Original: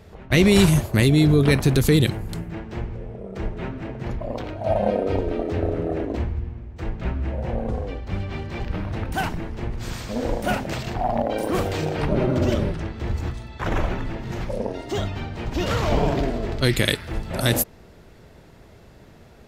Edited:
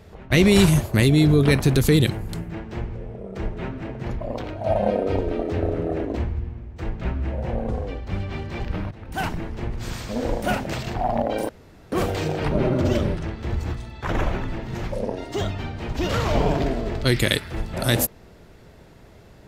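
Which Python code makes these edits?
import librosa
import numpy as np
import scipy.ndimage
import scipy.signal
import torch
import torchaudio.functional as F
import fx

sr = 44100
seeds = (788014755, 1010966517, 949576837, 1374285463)

y = fx.edit(x, sr, fx.fade_in_from(start_s=8.91, length_s=0.33, curve='qua', floor_db=-15.5),
    fx.insert_room_tone(at_s=11.49, length_s=0.43), tone=tone)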